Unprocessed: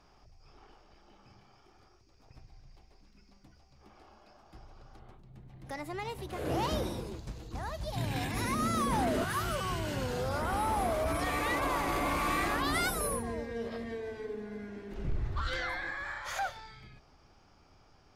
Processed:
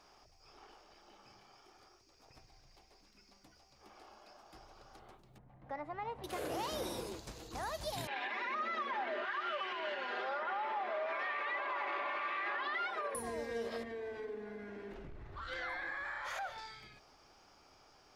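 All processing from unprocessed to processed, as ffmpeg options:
-filter_complex "[0:a]asettb=1/sr,asplit=3[s0][s1][s2];[s0]atrim=end=5.384[s3];[s1]atrim=start=5.38:end=6.24,asetpts=PTS-STARTPTS,afade=t=in:d=0.004:c=qsin,afade=t=out:st=0.856:d=0.004:c=qsin,lowpass=1300,equalizer=f=370:w=3.6:g=-11.5[s4];[s2]atrim=start=6.236[s5];[s3][s4]acrossfade=d=0.004:c1=hsin:c2=qsin[s6];[s6][s5]acrossfade=d=0.004:c1=qsin:c2=hsin,asettb=1/sr,asplit=3[s7][s8][s9];[s7]atrim=end=8.074[s10];[s8]atrim=start=8.07:end=13.15,asetpts=PTS-STARTPTS,afade=t=in:d=0.004:c=qsin,afade=t=out:st=5.076:d=0.004:c=qsin,highpass=f=350:w=0.5412,highpass=f=350:w=1.3066,equalizer=f=430:t=q:w=4:g=-7,equalizer=f=680:t=q:w=4:g=-3,equalizer=f=1800:t=q:w=4:g=5,lowpass=f=3100:w=0.5412,lowpass=f=3100:w=1.3066,aecho=1:1:5:0.79,atrim=end_sample=224028[s11];[s9]atrim=start=13.146[s12];[s10][s11]acrossfade=d=0.004:c1=hsin:c2=qsin[s13];[s13][s12]acrossfade=d=0.004:c1=qsin:c2=hsin,asettb=1/sr,asplit=3[s14][s15][s16];[s14]atrim=end=13.834[s17];[s15]atrim=start=13.83:end=16.58,asetpts=PTS-STARTPTS,afade=t=in:d=0.004:c=qsin,afade=t=out:st=2.746:d=0.004:c=qsin,bass=f=250:g=2,treble=f=4000:g=-12,acompressor=threshold=0.0112:ratio=3:attack=3.2:release=140:knee=1:detection=peak[s18];[s16]atrim=start=16.576[s19];[s17][s18]acrossfade=d=0.004:c1=hsin:c2=qsin[s20];[s20][s19]acrossfade=d=0.004:c1=qsin:c2=hsin,bass=f=250:g=-12,treble=f=4000:g=4,alimiter=level_in=2.24:limit=0.0631:level=0:latency=1:release=151,volume=0.447,volume=1.12"

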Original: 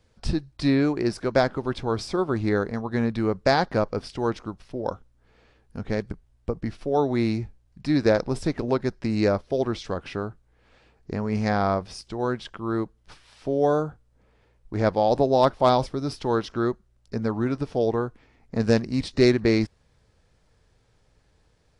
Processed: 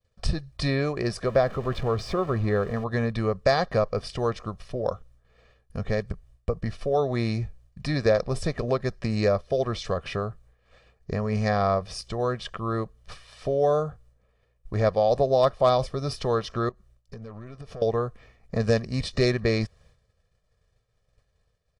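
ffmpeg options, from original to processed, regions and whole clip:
-filter_complex "[0:a]asettb=1/sr,asplit=3[s0][s1][s2];[s0]atrim=end=1.264[s3];[s1]atrim=start=1.26:end=2.84,asetpts=PTS-STARTPTS,afade=t=in:d=0.004:c=qsin,afade=t=out:st=1.576:d=0.004:c=qsin,aeval=exprs='val(0)+0.5*0.0178*sgn(val(0))':c=same,aemphasis=mode=reproduction:type=75kf[s4];[s2]atrim=start=2.836[s5];[s3][s4]acrossfade=d=0.004:c1=hsin:c2=qsin[s6];[s6][s5]acrossfade=d=0.004:c1=qsin:c2=hsin,asettb=1/sr,asplit=3[s7][s8][s9];[s7]atrim=end=16.694[s10];[s8]atrim=start=16.69:end=17.82,asetpts=PTS-STARTPTS,afade=t=in:d=0.004:c=qsin,afade=t=out:st=1.126:d=0.004:c=qsin,acompressor=threshold=0.0141:ratio=10:attack=3.2:release=140:knee=1:detection=peak,aeval=exprs='(tanh(63.1*val(0)+0.35)-tanh(0.35))/63.1':c=same[s11];[s9]atrim=start=17.816[s12];[s10][s11]acrossfade=d=0.004:c1=hsin:c2=qsin[s13];[s13][s12]acrossfade=d=0.004:c1=qsin:c2=hsin,agate=range=0.0224:threshold=0.00251:ratio=3:detection=peak,aecho=1:1:1.7:0.65,acompressor=threshold=0.0224:ratio=1.5,volume=1.5"

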